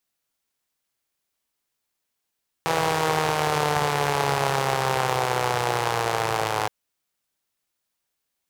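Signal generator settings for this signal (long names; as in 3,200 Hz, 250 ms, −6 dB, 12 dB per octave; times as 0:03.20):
pulse-train model of a four-cylinder engine, changing speed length 4.02 s, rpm 4,900, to 3,200, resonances 140/470/770 Hz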